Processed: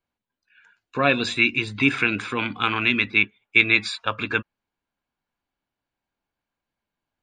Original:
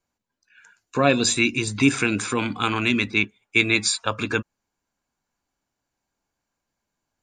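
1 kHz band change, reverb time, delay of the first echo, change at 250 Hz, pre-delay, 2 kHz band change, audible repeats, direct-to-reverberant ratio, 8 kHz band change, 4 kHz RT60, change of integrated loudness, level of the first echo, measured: 0.0 dB, no reverb audible, no echo audible, −3.5 dB, no reverb audible, +3.0 dB, no echo audible, no reverb audible, −16.5 dB, no reverb audible, +0.5 dB, no echo audible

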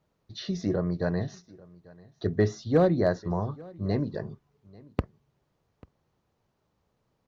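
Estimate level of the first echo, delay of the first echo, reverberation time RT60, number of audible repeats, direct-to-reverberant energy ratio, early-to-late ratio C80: −23.5 dB, 841 ms, no reverb audible, 1, no reverb audible, no reverb audible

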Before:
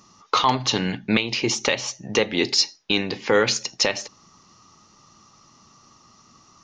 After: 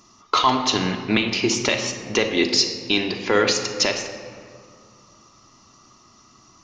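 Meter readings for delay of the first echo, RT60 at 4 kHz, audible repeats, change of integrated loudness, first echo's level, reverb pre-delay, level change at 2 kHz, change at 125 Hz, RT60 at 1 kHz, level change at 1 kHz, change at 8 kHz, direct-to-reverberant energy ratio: no echo audible, 1.2 s, no echo audible, +1.5 dB, no echo audible, 3 ms, +1.0 dB, 0.0 dB, 2.0 s, +1.5 dB, +1.0 dB, 3.5 dB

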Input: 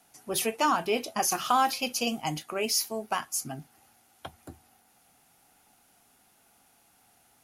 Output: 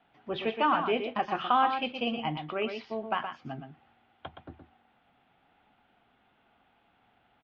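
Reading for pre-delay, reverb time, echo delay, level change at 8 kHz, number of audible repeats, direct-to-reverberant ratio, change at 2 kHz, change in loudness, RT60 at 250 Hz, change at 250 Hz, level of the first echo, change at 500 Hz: no reverb audible, no reverb audible, 120 ms, below −40 dB, 1, no reverb audible, −0.5 dB, −2.0 dB, no reverb audible, −0.5 dB, −7.5 dB, −0.5 dB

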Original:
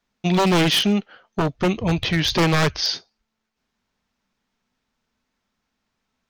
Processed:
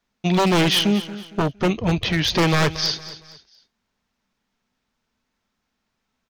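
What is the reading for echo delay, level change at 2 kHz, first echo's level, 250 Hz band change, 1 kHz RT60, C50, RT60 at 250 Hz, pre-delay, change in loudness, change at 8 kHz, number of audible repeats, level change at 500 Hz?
230 ms, 0.0 dB, −15.0 dB, 0.0 dB, no reverb audible, no reverb audible, no reverb audible, no reverb audible, 0.0 dB, 0.0 dB, 3, 0.0 dB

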